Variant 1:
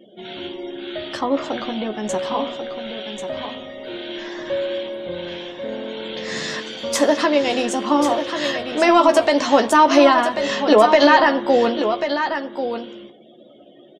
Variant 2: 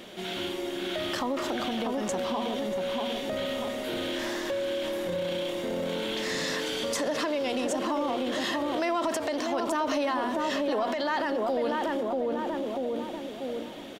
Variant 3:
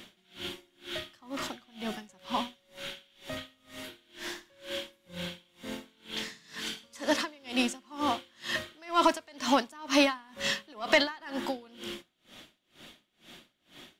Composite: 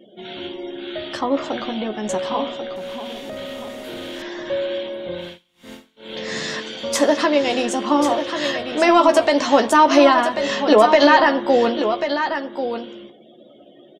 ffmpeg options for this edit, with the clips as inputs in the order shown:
-filter_complex "[0:a]asplit=3[a][b][c];[a]atrim=end=2.762[d];[1:a]atrim=start=2.758:end=4.222[e];[b]atrim=start=4.218:end=5.39[f];[2:a]atrim=start=5.15:end=6.2[g];[c]atrim=start=5.96[h];[d][e]acrossfade=d=0.004:c1=hsin:c2=hsin[i];[i][f]acrossfade=d=0.004:c1=hsin:c2=hsin[j];[j][g]acrossfade=d=0.24:c1=tri:c2=tri[k];[k][h]acrossfade=d=0.24:c1=tri:c2=tri"

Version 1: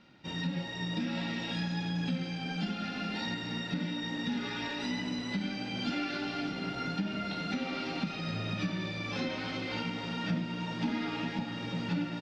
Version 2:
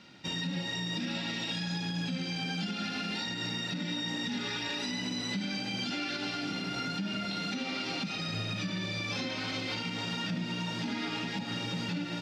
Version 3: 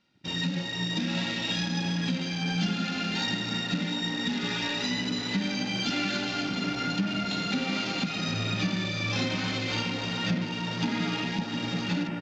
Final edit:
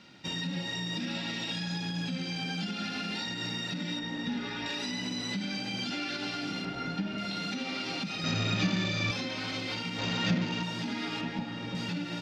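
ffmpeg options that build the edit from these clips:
-filter_complex "[0:a]asplit=3[a][b][c];[2:a]asplit=2[d][e];[1:a]asplit=6[f][g][h][i][j][k];[f]atrim=end=3.992[l];[a]atrim=start=3.988:end=4.662[m];[g]atrim=start=4.658:end=6.652[n];[b]atrim=start=6.648:end=7.182[o];[h]atrim=start=7.178:end=8.242[p];[d]atrim=start=8.238:end=9.112[q];[i]atrim=start=9.108:end=9.992[r];[e]atrim=start=9.988:end=10.632[s];[j]atrim=start=10.628:end=11.212[t];[c]atrim=start=11.208:end=11.752[u];[k]atrim=start=11.748[v];[l][m]acrossfade=d=0.004:c1=hsin:c2=hsin[w];[w][n]acrossfade=d=0.004:c1=hsin:c2=hsin[x];[x][o]acrossfade=d=0.004:c1=hsin:c2=hsin[y];[y][p]acrossfade=d=0.004:c1=hsin:c2=hsin[z];[z][q]acrossfade=d=0.004:c1=hsin:c2=hsin[aa];[aa][r]acrossfade=d=0.004:c1=hsin:c2=hsin[ab];[ab][s]acrossfade=d=0.004:c1=hsin:c2=hsin[ac];[ac][t]acrossfade=d=0.004:c1=hsin:c2=hsin[ad];[ad][u]acrossfade=d=0.004:c1=hsin:c2=hsin[ae];[ae][v]acrossfade=d=0.004:c1=hsin:c2=hsin"

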